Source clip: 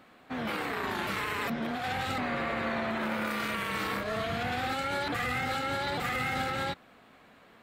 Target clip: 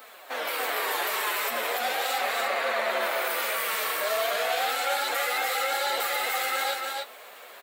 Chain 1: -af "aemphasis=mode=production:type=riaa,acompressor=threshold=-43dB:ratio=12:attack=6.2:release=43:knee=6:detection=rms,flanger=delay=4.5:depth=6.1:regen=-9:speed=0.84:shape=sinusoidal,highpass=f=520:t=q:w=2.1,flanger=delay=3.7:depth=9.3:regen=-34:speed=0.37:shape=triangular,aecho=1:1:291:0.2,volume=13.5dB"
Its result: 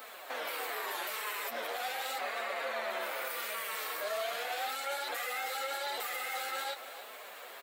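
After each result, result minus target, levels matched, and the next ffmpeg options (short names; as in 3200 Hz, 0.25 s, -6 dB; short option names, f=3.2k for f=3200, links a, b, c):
compressor: peak gain reduction +8 dB; echo-to-direct -11 dB
-af "aemphasis=mode=production:type=riaa,acompressor=threshold=-34.5dB:ratio=12:attack=6.2:release=43:knee=6:detection=rms,flanger=delay=4.5:depth=6.1:regen=-9:speed=0.84:shape=sinusoidal,highpass=f=520:t=q:w=2.1,flanger=delay=3.7:depth=9.3:regen=-34:speed=0.37:shape=triangular,aecho=1:1:291:0.2,volume=13.5dB"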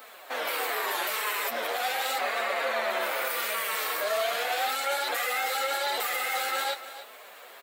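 echo-to-direct -11 dB
-af "aemphasis=mode=production:type=riaa,acompressor=threshold=-34.5dB:ratio=12:attack=6.2:release=43:knee=6:detection=rms,flanger=delay=4.5:depth=6.1:regen=-9:speed=0.84:shape=sinusoidal,highpass=f=520:t=q:w=2.1,flanger=delay=3.7:depth=9.3:regen=-34:speed=0.37:shape=triangular,aecho=1:1:291:0.708,volume=13.5dB"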